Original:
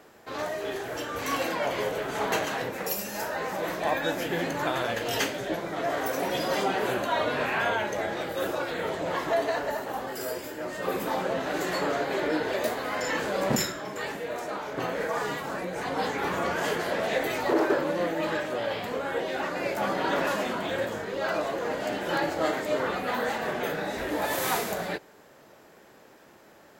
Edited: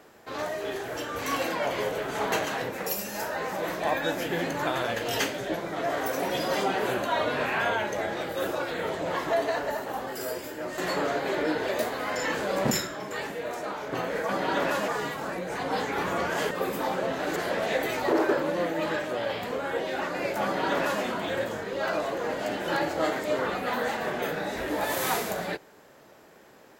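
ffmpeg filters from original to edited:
-filter_complex "[0:a]asplit=6[s0][s1][s2][s3][s4][s5];[s0]atrim=end=10.782[s6];[s1]atrim=start=11.628:end=15.142[s7];[s2]atrim=start=19.848:end=20.442[s8];[s3]atrim=start=15.138:end=16.772[s9];[s4]atrim=start=10.778:end=11.632[s10];[s5]atrim=start=16.768[s11];[s6][s7]acrossfade=d=0.004:c1=hsin:c2=hsin[s12];[s12][s8]acrossfade=d=0.004:c1=hsin:c2=hsin[s13];[s13][s9]acrossfade=d=0.004:c1=hsin:c2=hsin[s14];[s14][s10]acrossfade=d=0.004:c1=hsin:c2=hsin[s15];[s15][s11]acrossfade=d=0.004:c1=hsin:c2=hsin"

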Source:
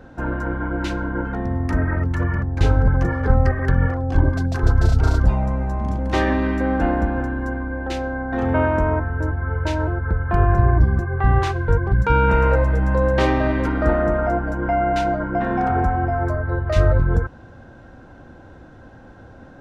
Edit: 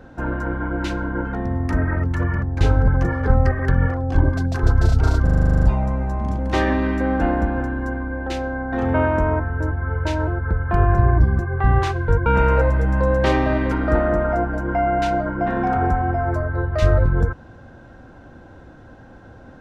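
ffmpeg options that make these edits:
-filter_complex "[0:a]asplit=12[s0][s1][s2][s3][s4][s5][s6][s7][s8][s9][s10][s11];[s0]atrim=end=5.272[s12];[s1]atrim=start=5.228:end=5.272[s13];[s2]atrim=start=5.228:end=5.272[s14];[s3]atrim=start=5.228:end=5.272[s15];[s4]atrim=start=5.228:end=5.272[s16];[s5]atrim=start=5.228:end=5.272[s17];[s6]atrim=start=5.228:end=5.272[s18];[s7]atrim=start=5.228:end=5.272[s19];[s8]atrim=start=5.228:end=5.272[s20];[s9]atrim=start=5.228:end=5.272[s21];[s10]atrim=start=5.228:end=11.862[s22];[s11]atrim=start=12.198[s23];[s12][s13]acrossfade=d=0.004:c1=hsin:c2=hsin[s24];[s24][s14]acrossfade=d=0.004:c1=hsin:c2=hsin[s25];[s25][s15]acrossfade=d=0.004:c1=hsin:c2=hsin[s26];[s26][s16]acrossfade=d=0.004:c1=hsin:c2=hsin[s27];[s27][s17]acrossfade=d=0.004:c1=hsin:c2=hsin[s28];[s28][s18]acrossfade=d=0.004:c1=hsin:c2=hsin[s29];[s29][s19]acrossfade=d=0.004:c1=hsin:c2=hsin[s30];[s30][s20]acrossfade=d=0.004:c1=hsin:c2=hsin[s31];[s31][s21]acrossfade=d=0.004:c1=hsin:c2=hsin[s32];[s32][s22]acrossfade=d=0.004:c1=hsin:c2=hsin[s33];[s33][s23]acrossfade=d=0.004:c1=hsin:c2=hsin"

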